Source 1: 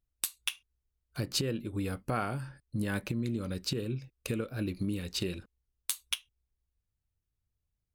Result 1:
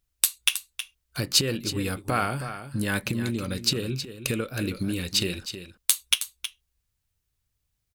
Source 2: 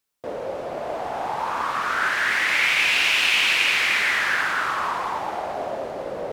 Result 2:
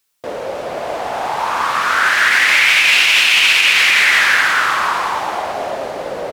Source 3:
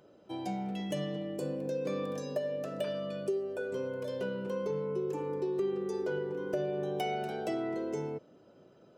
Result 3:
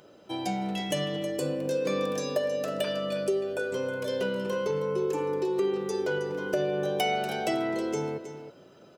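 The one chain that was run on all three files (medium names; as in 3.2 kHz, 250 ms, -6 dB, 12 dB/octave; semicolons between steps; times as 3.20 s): tilt shelf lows -4 dB, about 1.2 kHz; on a send: delay 318 ms -11 dB; on the sum: loudness maximiser +9 dB; trim -1 dB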